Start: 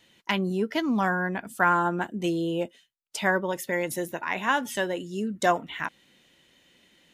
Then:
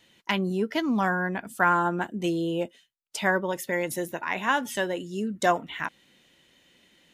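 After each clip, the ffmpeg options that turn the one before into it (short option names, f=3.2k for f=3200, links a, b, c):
-af anull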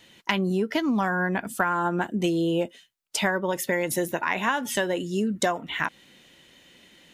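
-af "acompressor=threshold=-27dB:ratio=12,volume=6.5dB"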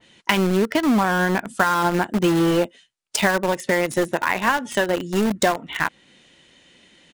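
-filter_complex "[0:a]aresample=22050,aresample=44100,asplit=2[a][b];[b]acrusher=bits=3:mix=0:aa=0.000001,volume=-3.5dB[c];[a][c]amix=inputs=2:normalize=0,adynamicequalizer=threshold=0.0141:dfrequency=2600:dqfactor=0.7:tfrequency=2600:tqfactor=0.7:attack=5:release=100:ratio=0.375:range=2.5:mode=cutabove:tftype=highshelf,volume=1dB"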